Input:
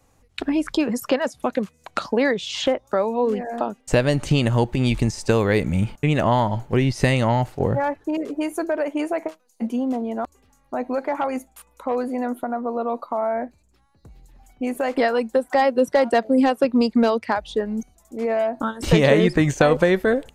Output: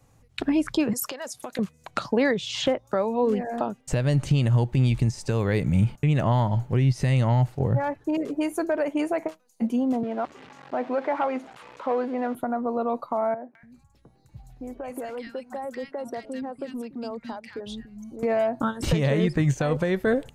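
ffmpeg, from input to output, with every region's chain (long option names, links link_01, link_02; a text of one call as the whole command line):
ffmpeg -i in.wav -filter_complex "[0:a]asettb=1/sr,asplit=3[link_01][link_02][link_03];[link_01]atrim=end=0.934[link_04];[link_02]atrim=start=0.93:end=1.59,asetpts=PTS-STARTPTS,afade=type=in:duration=0.004:curve=qsin,afade=type=out:start_time=0.656:duration=0.004:curve=qsin,acompressor=threshold=-27dB:ratio=8:attack=3.2:release=140:knee=1:detection=peak,bass=frequency=250:gain=-13,treble=frequency=4000:gain=11[link_05];[link_03]atrim=start=1.586[link_06];[link_04][link_05]acrossfade=duration=0.004:curve1=hsin:curve2=qsin[link_07];[link_07][link_06]acrossfade=duration=0.004:curve1=qsin:curve2=hsin,asettb=1/sr,asplit=3[link_08][link_09][link_10];[link_08]atrim=end=10.034[link_11];[link_09]atrim=start=10.03:end=12.35,asetpts=PTS-STARTPTS,afade=type=in:duration=0.004:curve=qsin,afade=type=out:start_time=2.316:duration=0.004:curve=qsin,aeval=exprs='val(0)+0.5*0.0168*sgn(val(0))':channel_layout=same,highpass=290,lowpass=3100[link_12];[link_10]atrim=start=12.346[link_13];[link_11][link_12]acrossfade=duration=0.004:curve1=hsin:curve2=qsin[link_14];[link_14][link_13]acrossfade=duration=0.004:curve1=qsin:curve2=hsin,asettb=1/sr,asplit=3[link_15][link_16][link_17];[link_15]atrim=end=13.344[link_18];[link_16]atrim=start=13.34:end=18.23,asetpts=PTS-STARTPTS,afade=type=in:duration=0.004:curve=qsin,afade=type=out:start_time=4.886:duration=0.004:curve=qsin,acompressor=threshold=-34dB:ratio=2.5:attack=3.2:release=140:knee=1:detection=peak,acrossover=split=200|1600[link_19][link_20][link_21];[link_21]adelay=210[link_22];[link_19]adelay=290[link_23];[link_23][link_20][link_22]amix=inputs=3:normalize=0,atrim=end_sample=215649[link_24];[link_17]atrim=start=18.226[link_25];[link_18][link_24]acrossfade=duration=0.004:curve1=hsin:curve2=qsin[link_26];[link_26][link_25]acrossfade=duration=0.004:curve1=qsin:curve2=hsin,equalizer=frequency=130:width=1.7:gain=10.5,alimiter=limit=-10dB:level=0:latency=1:release=391,volume=-2dB" out.wav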